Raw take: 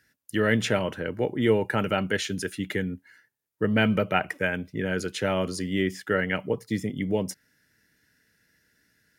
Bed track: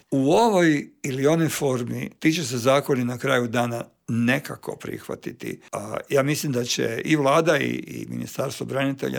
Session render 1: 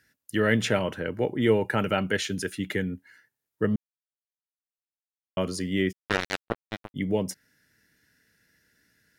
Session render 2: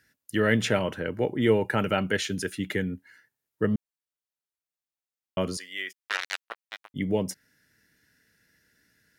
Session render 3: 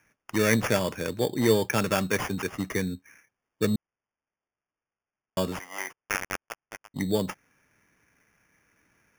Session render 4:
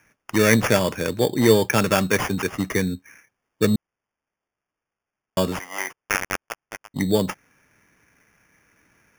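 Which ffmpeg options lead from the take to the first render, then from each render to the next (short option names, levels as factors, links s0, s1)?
-filter_complex "[0:a]asplit=3[s0][s1][s2];[s0]afade=t=out:st=5.91:d=0.02[s3];[s1]acrusher=bits=2:mix=0:aa=0.5,afade=t=in:st=5.91:d=0.02,afade=t=out:st=6.94:d=0.02[s4];[s2]afade=t=in:st=6.94:d=0.02[s5];[s3][s4][s5]amix=inputs=3:normalize=0,asplit=3[s6][s7][s8];[s6]atrim=end=3.76,asetpts=PTS-STARTPTS,afade=t=out:st=3.756:d=0.004:c=hsin[s9];[s7]atrim=start=3.76:end=5.37,asetpts=PTS-STARTPTS,volume=0[s10];[s8]atrim=start=5.37,asetpts=PTS-STARTPTS,afade=t=in:d=0.004:c=hsin[s11];[s9][s10][s11]concat=n=3:v=0:a=1"
-filter_complex "[0:a]asettb=1/sr,asplit=3[s0][s1][s2];[s0]atrim=end=5.574[s3];[s1]atrim=start=5.57:end=6.9,asetpts=PTS-STARTPTS,afade=t=in:d=0.004:c=qsin,afade=t=out:st=1.326:d=0.004:c=qsin,highpass=1200[s4];[s2]atrim=start=6.896[s5];[s3][s4]acrossfade=d=0.004:c1=hsin:c2=qsin[s6];[s6][s5]acrossfade=d=0.004:c1=qsin:c2=hsin"
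-af "acrusher=samples=11:mix=1:aa=0.000001"
-af "volume=2"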